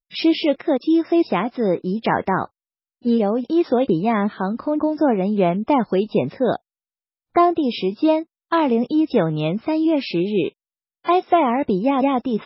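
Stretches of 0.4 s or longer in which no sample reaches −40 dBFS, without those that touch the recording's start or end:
0:02.46–0:03.05
0:06.57–0:07.35
0:10.49–0:11.05

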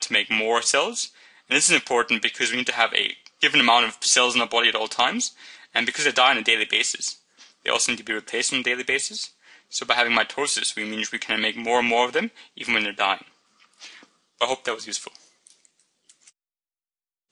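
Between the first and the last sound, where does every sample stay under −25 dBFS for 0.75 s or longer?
0:13.15–0:14.41

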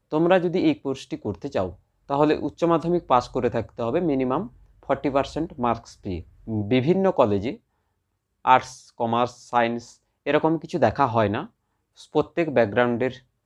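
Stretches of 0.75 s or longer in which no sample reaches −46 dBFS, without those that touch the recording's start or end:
0:07.57–0:08.45

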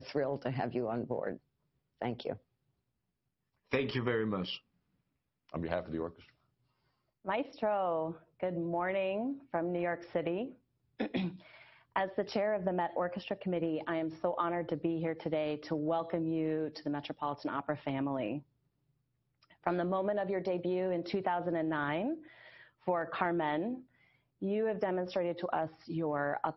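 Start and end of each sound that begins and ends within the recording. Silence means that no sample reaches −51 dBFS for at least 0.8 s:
0:03.71–0:04.59
0:05.49–0:06.29
0:07.25–0:18.41

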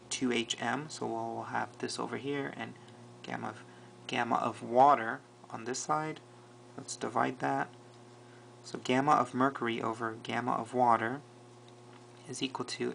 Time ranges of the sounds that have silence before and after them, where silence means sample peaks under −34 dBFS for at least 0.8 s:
0:08.74–0:11.17

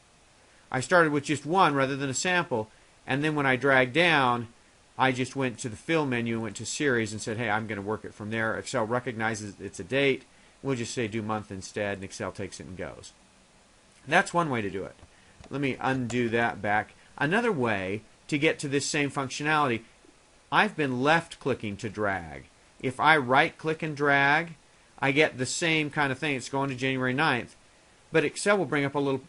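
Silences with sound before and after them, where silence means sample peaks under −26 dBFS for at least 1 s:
0:12.88–0:14.10

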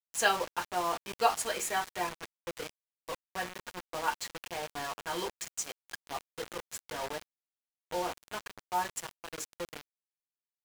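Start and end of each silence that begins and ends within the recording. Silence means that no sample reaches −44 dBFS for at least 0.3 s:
0:02.69–0:03.08
0:07.22–0:07.91

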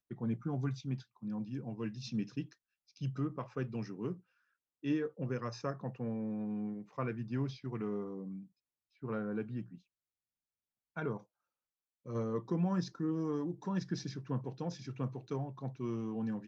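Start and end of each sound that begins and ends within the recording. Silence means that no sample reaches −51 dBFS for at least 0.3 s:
0:02.96–0:04.19
0:04.83–0:08.45
0:09.03–0:09.78
0:10.96–0:11.20

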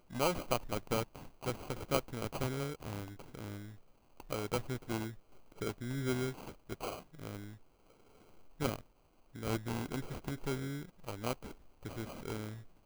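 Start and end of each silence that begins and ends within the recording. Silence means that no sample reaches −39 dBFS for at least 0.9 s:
0:07.47–0:08.60

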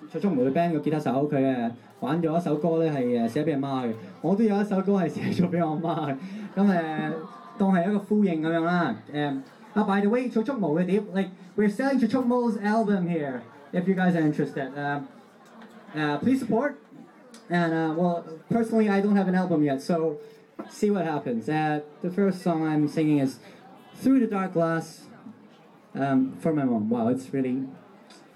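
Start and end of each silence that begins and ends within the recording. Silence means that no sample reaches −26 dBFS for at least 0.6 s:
0:14.98–0:15.96
0:16.70–0:17.51
0:23.29–0:24.05
0:24.80–0:25.95

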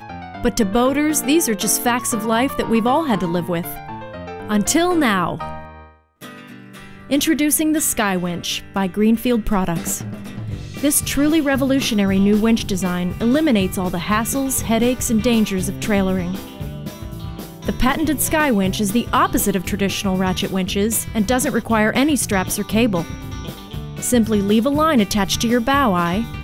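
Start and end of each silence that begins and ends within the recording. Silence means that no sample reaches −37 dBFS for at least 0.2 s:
0:05.87–0:06.21

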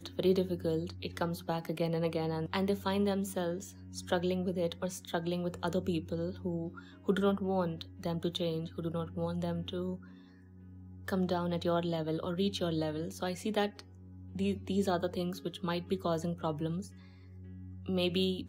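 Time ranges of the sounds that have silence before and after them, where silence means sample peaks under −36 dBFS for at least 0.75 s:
0:11.08–0:16.82

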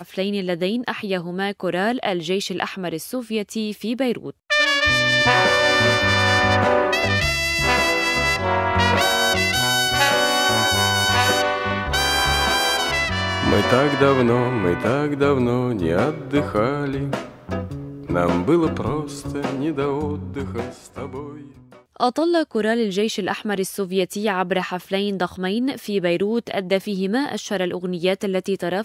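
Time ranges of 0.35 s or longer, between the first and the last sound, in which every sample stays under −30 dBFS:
0:21.40–0:21.96

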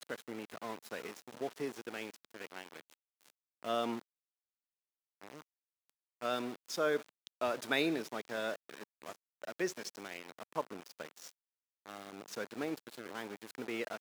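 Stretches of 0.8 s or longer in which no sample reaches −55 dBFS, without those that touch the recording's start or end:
0:04.01–0:05.21

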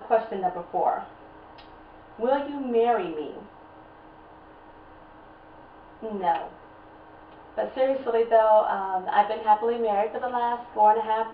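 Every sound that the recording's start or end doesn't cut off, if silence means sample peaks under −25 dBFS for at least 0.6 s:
0:02.23–0:03.22
0:06.05–0:06.42

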